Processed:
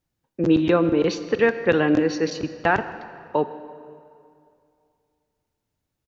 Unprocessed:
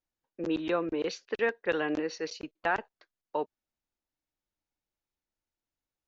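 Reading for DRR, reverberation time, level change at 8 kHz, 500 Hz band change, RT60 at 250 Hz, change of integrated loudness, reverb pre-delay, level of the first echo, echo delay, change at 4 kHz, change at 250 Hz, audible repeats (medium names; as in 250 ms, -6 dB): 11.0 dB, 2.5 s, no reading, +10.5 dB, 2.4 s, +11.0 dB, 17 ms, -21.0 dB, 160 ms, +7.5 dB, +13.5 dB, 1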